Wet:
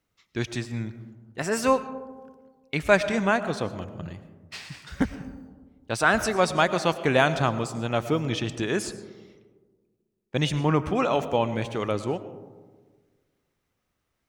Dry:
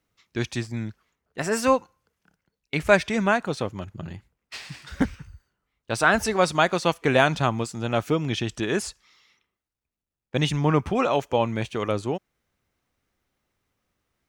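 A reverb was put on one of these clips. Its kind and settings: algorithmic reverb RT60 1.5 s, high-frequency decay 0.25×, pre-delay 65 ms, DRR 12.5 dB; trim -1.5 dB

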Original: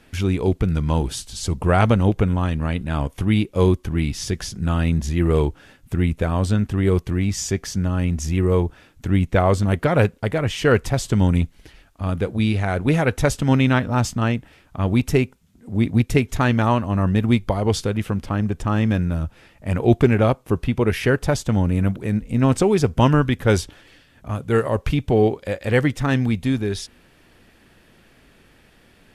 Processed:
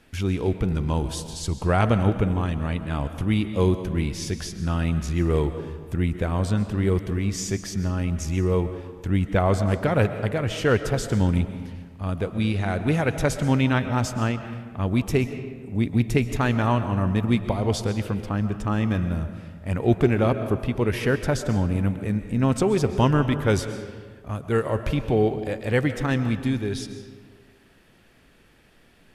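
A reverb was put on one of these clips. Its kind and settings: algorithmic reverb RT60 1.6 s, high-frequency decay 0.6×, pre-delay 90 ms, DRR 9.5 dB; trim -4 dB

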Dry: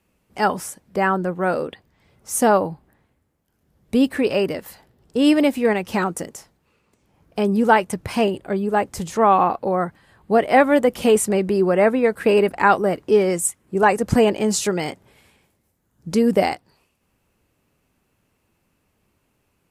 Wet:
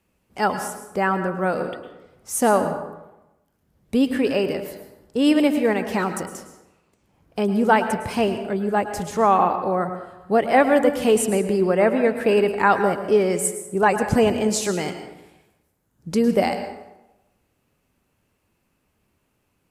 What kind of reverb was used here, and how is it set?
plate-style reverb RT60 0.95 s, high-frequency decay 0.6×, pre-delay 95 ms, DRR 8.5 dB; trim -2 dB

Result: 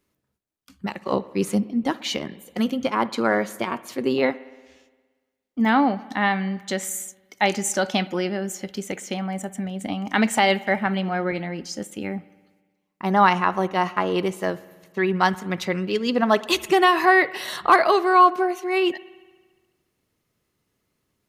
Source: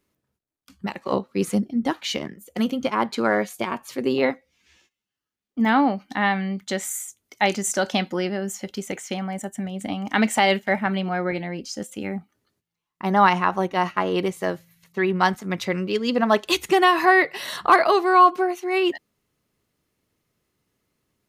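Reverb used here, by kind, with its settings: spring tank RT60 1.4 s, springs 58 ms, chirp 60 ms, DRR 18 dB

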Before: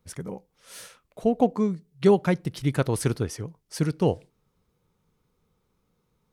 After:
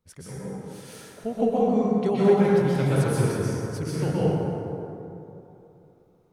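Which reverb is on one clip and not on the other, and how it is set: plate-style reverb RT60 3 s, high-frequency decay 0.45×, pre-delay 110 ms, DRR -9.5 dB; trim -8.5 dB

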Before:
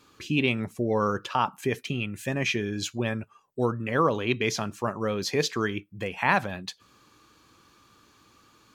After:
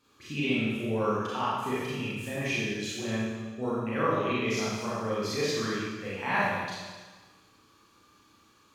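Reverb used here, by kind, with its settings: Schroeder reverb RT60 1.4 s, combs from 28 ms, DRR -9 dB; trim -12 dB

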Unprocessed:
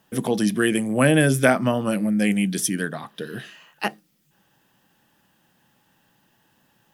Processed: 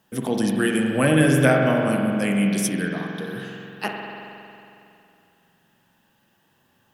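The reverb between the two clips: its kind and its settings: spring tank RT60 2.7 s, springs 45 ms, chirp 25 ms, DRR 1 dB; trim -2.5 dB

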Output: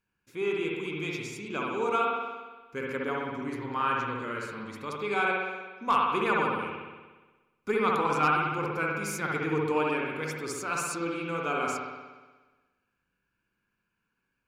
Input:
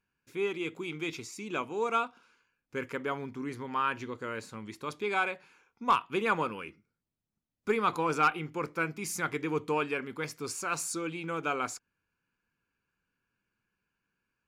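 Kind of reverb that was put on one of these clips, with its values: spring tank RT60 1.3 s, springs 59 ms, chirp 40 ms, DRR -2 dB; trim -1 dB

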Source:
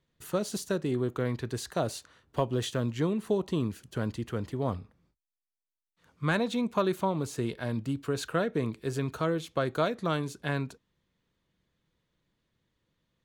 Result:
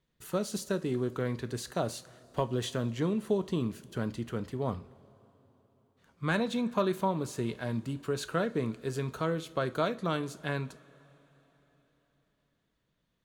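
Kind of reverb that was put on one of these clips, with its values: two-slope reverb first 0.29 s, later 4.2 s, from -21 dB, DRR 11 dB; trim -2 dB

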